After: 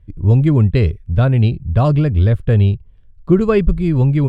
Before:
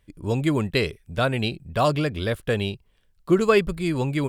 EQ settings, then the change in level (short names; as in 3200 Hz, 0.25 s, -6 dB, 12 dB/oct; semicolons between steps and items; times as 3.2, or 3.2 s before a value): RIAA curve playback; bell 90 Hz +6 dB 1.2 oct; 0.0 dB